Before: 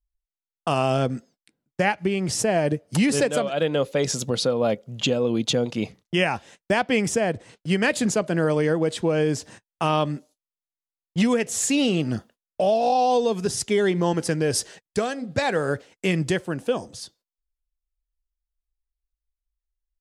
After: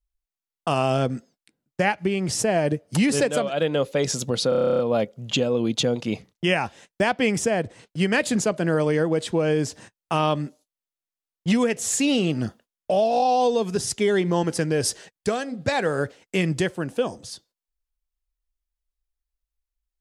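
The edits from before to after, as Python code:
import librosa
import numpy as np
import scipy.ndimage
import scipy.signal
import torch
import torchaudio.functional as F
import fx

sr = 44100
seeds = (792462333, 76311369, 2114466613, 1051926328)

y = fx.edit(x, sr, fx.stutter(start_s=4.49, slice_s=0.03, count=11), tone=tone)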